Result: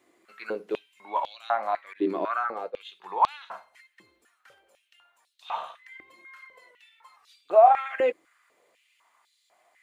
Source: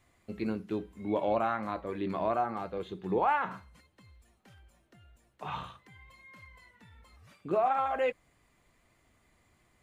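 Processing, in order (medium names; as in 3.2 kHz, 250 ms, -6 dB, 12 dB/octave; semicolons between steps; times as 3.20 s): 1.93–2.85 s: expander -32 dBFS; step-sequenced high-pass 4 Hz 340–3900 Hz; trim +1.5 dB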